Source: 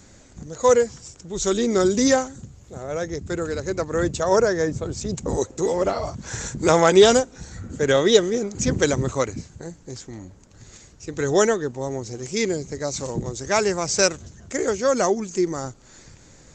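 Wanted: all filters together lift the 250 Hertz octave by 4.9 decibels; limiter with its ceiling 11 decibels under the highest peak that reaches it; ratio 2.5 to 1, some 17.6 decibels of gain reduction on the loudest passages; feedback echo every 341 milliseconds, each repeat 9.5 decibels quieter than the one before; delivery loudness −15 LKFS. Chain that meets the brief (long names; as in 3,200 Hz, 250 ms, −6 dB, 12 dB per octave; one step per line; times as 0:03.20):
parametric band 250 Hz +6.5 dB
downward compressor 2.5 to 1, threshold −34 dBFS
brickwall limiter −27 dBFS
repeating echo 341 ms, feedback 33%, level −9.5 dB
level +21.5 dB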